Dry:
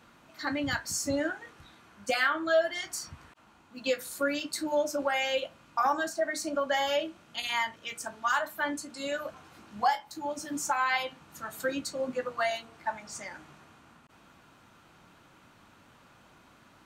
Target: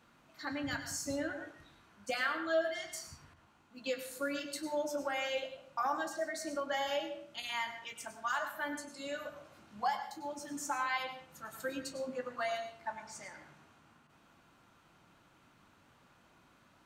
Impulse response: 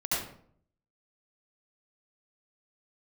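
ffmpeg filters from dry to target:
-filter_complex "[0:a]asplit=2[s0][s1];[1:a]atrim=start_sample=2205,adelay=28[s2];[s1][s2]afir=irnorm=-1:irlink=0,volume=0.158[s3];[s0][s3]amix=inputs=2:normalize=0,volume=0.422"

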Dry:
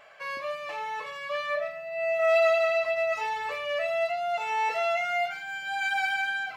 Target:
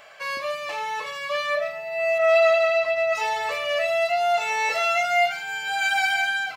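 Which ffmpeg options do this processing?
-filter_complex "[0:a]acrossover=split=3500[s0][s1];[s1]acontrast=86[s2];[s0][s2]amix=inputs=2:normalize=0,asettb=1/sr,asplit=3[s3][s4][s5];[s3]atrim=end=2.184[s6];[s4]atrim=start=2.18:end=3.15,asetpts=PTS-STARTPTS,afade=t=in:d=0.004:c=qsin,afade=t=out:st=0.966:d=0.004:c=qsin,highshelf=f=5000:g=-11[s7];[s5]atrim=start=3.146[s8];[s6][s7]acrossfade=d=0.004:c1=hsin:c2=qsin[s9];[s9][s8]acrossfade=d=0.004:c1=qsin:c2=hsin,asettb=1/sr,asplit=3[s10][s11][s12];[s10]atrim=end=4.104[s13];[s11]atrim=start=4.1:end=5.32,asetpts=PTS-STARTPTS,afade=t=in:d=0.004:c=qsin,afade=t=out:st=1.216:d=0.004:c=qsin,asplit=2[s14][s15];[s15]adelay=20,volume=0.501[s16];[s14][s16]amix=inputs=2:normalize=0,atrim=end_sample=53802[s17];[s12]atrim=start=5.316[s18];[s13][s17]acrossfade=d=0.004:c1=hsin:c2=qsin[s19];[s19][s18]acrossfade=d=0.004:c1=qsin:c2=hsin,asplit=2[s20][s21];[s21]adelay=991.3,volume=0.126,highshelf=f=4000:g=-22.3[s22];[s20][s22]amix=inputs=2:normalize=0,volume=1.68"

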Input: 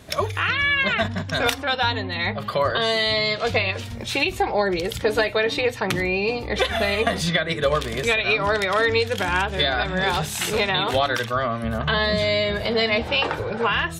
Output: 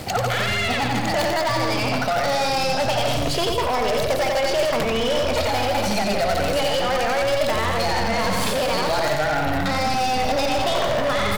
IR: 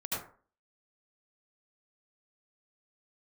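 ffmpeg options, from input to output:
-filter_complex "[0:a]acrossover=split=970|5100[s0][s1][s2];[s0]acompressor=threshold=0.0562:ratio=4[s3];[s1]acompressor=threshold=0.02:ratio=4[s4];[s2]acompressor=threshold=0.00562:ratio=4[s5];[s3][s4][s5]amix=inputs=3:normalize=0,asplit=2[s6][s7];[s7]acrusher=bits=4:dc=4:mix=0:aa=0.000001,volume=0.355[s8];[s6][s8]amix=inputs=2:normalize=0,aecho=1:1:110|198|268.4|324.7|369.8:0.631|0.398|0.251|0.158|0.1,areverse,acompressor=threshold=0.0282:ratio=5,areverse,asetrate=54243,aresample=44100,equalizer=f=620:t=o:w=0.39:g=5.5,aeval=exprs='0.0708*(cos(1*acos(clip(val(0)/0.0708,-1,1)))-cos(1*PI/2))+0.00251*(cos(4*acos(clip(val(0)/0.0708,-1,1)))-cos(4*PI/2))+0.0141*(cos(5*acos(clip(val(0)/0.0708,-1,1)))-cos(5*PI/2))':c=same,asubboost=boost=3:cutoff=52,volume=2.82"

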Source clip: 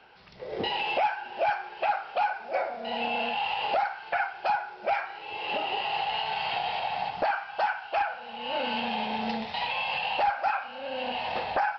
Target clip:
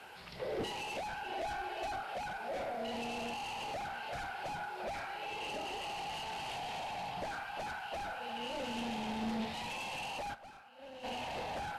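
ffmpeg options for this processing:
-filter_complex "[0:a]bandreject=f=50:t=h:w=6,bandreject=f=100:t=h:w=6,bandreject=f=150:t=h:w=6,bandreject=f=200:t=h:w=6,bandreject=f=250:t=h:w=6,bandreject=f=300:t=h:w=6,bandreject=f=350:t=h:w=6,bandreject=f=400:t=h:w=6,bandreject=f=450:t=h:w=6,bandreject=f=500:t=h:w=6,asplit=2[s0][s1];[s1]aecho=0:1:350|700|1050|1400:0.1|0.053|0.0281|0.0149[s2];[s0][s2]amix=inputs=2:normalize=0,asoftclip=type=tanh:threshold=0.02,acrossover=split=440[s3][s4];[s4]alimiter=level_in=5.01:limit=0.0631:level=0:latency=1:release=125,volume=0.2[s5];[s3][s5]amix=inputs=2:normalize=0,asettb=1/sr,asplit=3[s6][s7][s8];[s6]atrim=end=1.264[s9];[s7]atrim=start=1.26:end=2,asetpts=PTS-STARTPTS,afade=t=in:d=0.004:c=qsin,afade=t=out:st=0.736:d=0.004:c=qsin,aecho=1:1:2.7:0.57,atrim=end_sample=32634[s10];[s8]atrim=start=1.996[s11];[s9][s10]acrossfade=d=0.004:c1=hsin:c2=qsin[s12];[s12][s11]acrossfade=d=0.004:c1=qsin:c2=hsin,acrusher=bits=10:mix=0:aa=0.000001,asplit=3[s13][s14][s15];[s13]afade=t=out:st=10.33:d=0.02[s16];[s14]agate=range=0.0224:threshold=0.02:ratio=3:detection=peak,afade=t=in:st=10.33:d=0.02,afade=t=out:st=11.03:d=0.02[s17];[s15]afade=t=in:st=11.03:d=0.02[s18];[s16][s17][s18]amix=inputs=3:normalize=0,volume=1.5" -ar 32000 -c:a libvorbis -b:a 48k

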